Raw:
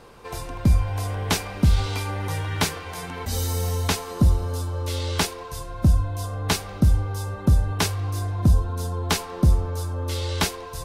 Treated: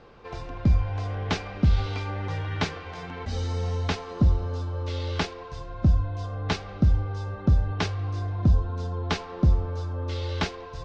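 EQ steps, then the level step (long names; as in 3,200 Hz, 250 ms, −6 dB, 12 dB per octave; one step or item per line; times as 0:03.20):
low-pass filter 6,900 Hz 24 dB per octave
high-frequency loss of the air 140 metres
notch filter 970 Hz, Q 12
−2.5 dB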